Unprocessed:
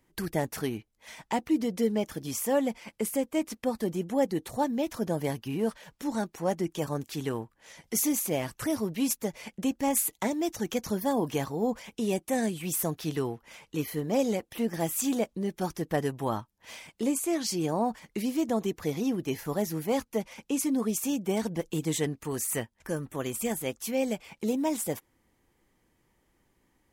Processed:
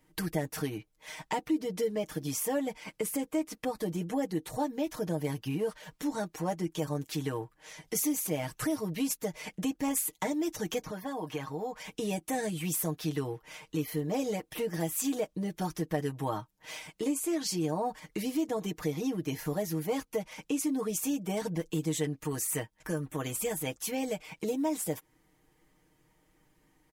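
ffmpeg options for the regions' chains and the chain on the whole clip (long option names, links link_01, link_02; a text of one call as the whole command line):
ffmpeg -i in.wav -filter_complex "[0:a]asettb=1/sr,asplit=3[link_01][link_02][link_03];[link_01]atrim=end=10.824[link_04];[link_02]atrim=start=10.82:end=11.8,asetpts=PTS-STARTPTS,afade=type=in:duration=0.004:curve=qsin,afade=type=out:start_time=0.976:duration=0.004:curve=qsin,acrossover=split=690|2900[link_05][link_06][link_07];[link_05]acompressor=threshold=-40dB:ratio=4[link_08];[link_06]acompressor=threshold=-38dB:ratio=4[link_09];[link_07]acompressor=threshold=-47dB:ratio=4[link_10];[link_08][link_09][link_10]amix=inputs=3:normalize=0,highshelf=frequency=4300:gain=-9[link_11];[link_03]atrim=start=11.796[link_12];[link_04][link_11]acrossfade=duration=0.004:curve1=hsin:curve2=qsin[link_13];[link_13][link_12]acrossfade=duration=0.004:curve1=qsin:curve2=hsin,aecho=1:1:6.5:0.82,acompressor=threshold=-32dB:ratio=2" out.wav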